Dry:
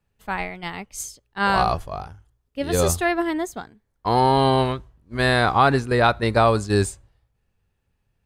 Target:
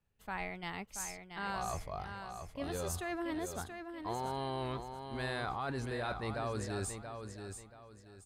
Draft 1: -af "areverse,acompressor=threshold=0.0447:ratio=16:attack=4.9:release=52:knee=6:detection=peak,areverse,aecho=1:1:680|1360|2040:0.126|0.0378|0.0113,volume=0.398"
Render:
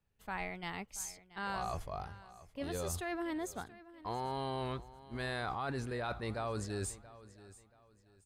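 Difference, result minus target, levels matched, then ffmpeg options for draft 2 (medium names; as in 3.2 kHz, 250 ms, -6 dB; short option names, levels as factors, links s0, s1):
echo-to-direct -10.5 dB
-af "areverse,acompressor=threshold=0.0447:ratio=16:attack=4.9:release=52:knee=6:detection=peak,areverse,aecho=1:1:680|1360|2040|2720:0.422|0.127|0.038|0.0114,volume=0.398"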